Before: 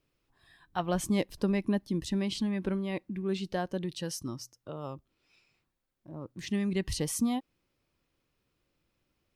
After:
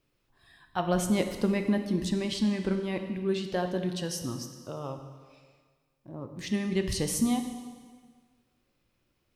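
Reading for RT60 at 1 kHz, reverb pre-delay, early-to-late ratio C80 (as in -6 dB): 1.6 s, 4 ms, 9.0 dB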